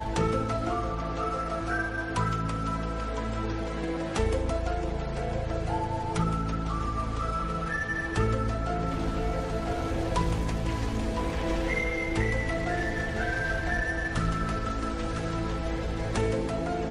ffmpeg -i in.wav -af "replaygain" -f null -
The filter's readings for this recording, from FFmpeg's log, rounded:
track_gain = +12.8 dB
track_peak = 0.151